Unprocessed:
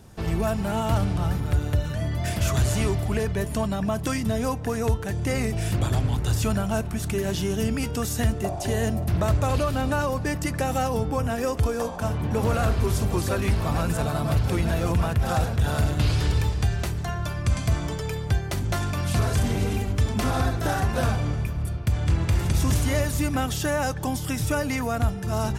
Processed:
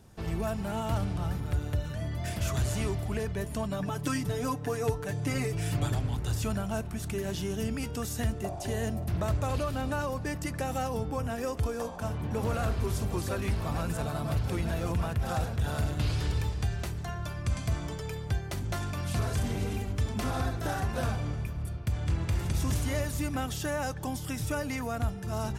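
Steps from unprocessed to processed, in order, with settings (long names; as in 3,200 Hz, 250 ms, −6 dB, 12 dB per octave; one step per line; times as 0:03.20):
0:03.70–0:05.94: comb filter 6.9 ms, depth 88%
level −7 dB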